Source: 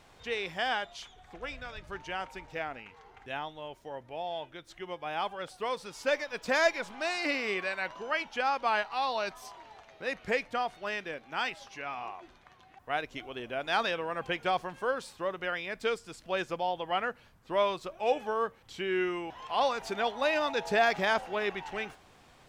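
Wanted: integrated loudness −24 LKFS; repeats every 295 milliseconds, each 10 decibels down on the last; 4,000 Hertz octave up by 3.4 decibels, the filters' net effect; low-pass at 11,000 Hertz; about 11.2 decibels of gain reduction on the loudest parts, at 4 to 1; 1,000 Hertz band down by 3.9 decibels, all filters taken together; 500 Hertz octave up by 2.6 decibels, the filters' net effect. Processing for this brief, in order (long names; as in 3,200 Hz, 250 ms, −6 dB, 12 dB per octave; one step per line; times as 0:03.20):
low-pass filter 11,000 Hz
parametric band 500 Hz +6 dB
parametric band 1,000 Hz −9 dB
parametric band 4,000 Hz +5 dB
downward compressor 4 to 1, threshold −33 dBFS
repeating echo 295 ms, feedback 32%, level −10 dB
level +13.5 dB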